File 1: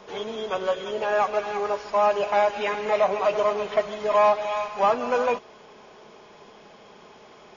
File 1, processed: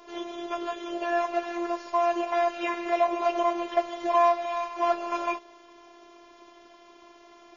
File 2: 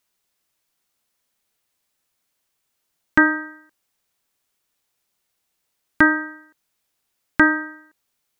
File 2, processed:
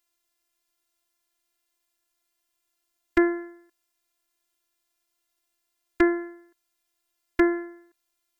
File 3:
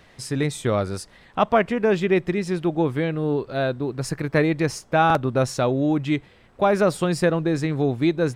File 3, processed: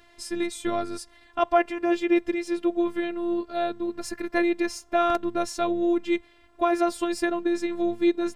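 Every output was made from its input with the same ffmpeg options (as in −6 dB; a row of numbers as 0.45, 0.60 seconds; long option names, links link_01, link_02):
-af "afftfilt=real='hypot(re,im)*cos(PI*b)':imag='0':win_size=512:overlap=0.75"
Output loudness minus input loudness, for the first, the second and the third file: −3.5, −6.5, −4.0 LU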